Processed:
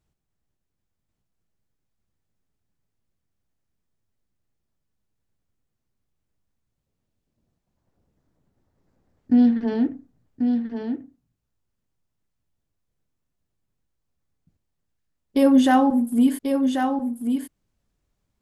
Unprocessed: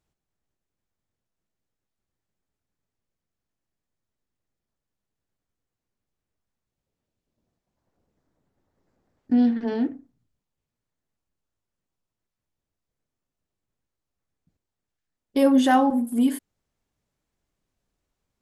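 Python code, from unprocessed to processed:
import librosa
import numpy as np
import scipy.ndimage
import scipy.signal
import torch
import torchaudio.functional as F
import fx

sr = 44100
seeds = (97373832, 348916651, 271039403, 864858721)

y = fx.bass_treble(x, sr, bass_db=6, treble_db=0)
y = y + 10.0 ** (-6.0 / 20.0) * np.pad(y, (int(1088 * sr / 1000.0), 0))[:len(y)]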